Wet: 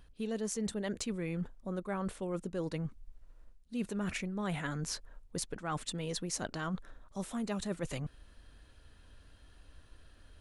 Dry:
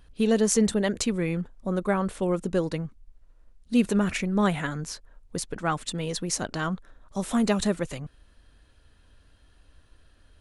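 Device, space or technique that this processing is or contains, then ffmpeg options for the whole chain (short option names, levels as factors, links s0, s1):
compression on the reversed sound: -af "areverse,acompressor=threshold=0.02:ratio=6,areverse"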